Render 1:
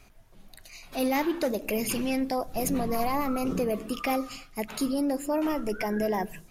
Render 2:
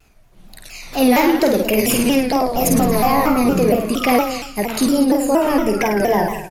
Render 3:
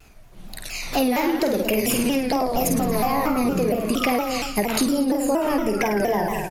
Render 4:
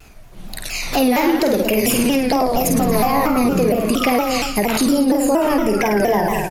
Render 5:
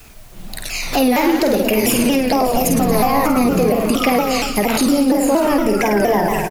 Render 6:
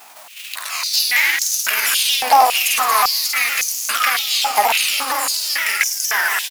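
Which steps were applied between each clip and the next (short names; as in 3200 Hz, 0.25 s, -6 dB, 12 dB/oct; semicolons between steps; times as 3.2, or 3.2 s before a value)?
AGC gain up to 10.5 dB; on a send: reverse bouncing-ball echo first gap 50 ms, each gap 1.1×, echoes 5; on the sum: shaped vibrato saw down 4.3 Hz, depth 160 cents
compressor 10:1, threshold -22 dBFS, peak gain reduction 13 dB; gain +4 dB
maximiser +12.5 dB; gain -6.5 dB
in parallel at -12 dB: requantised 6-bit, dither triangular; on the sum: echo 0.59 s -13.5 dB; gain -1 dB
spectral whitening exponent 0.6; hum 60 Hz, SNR 23 dB; stepped high-pass 3.6 Hz 830–6200 Hz; gain -1.5 dB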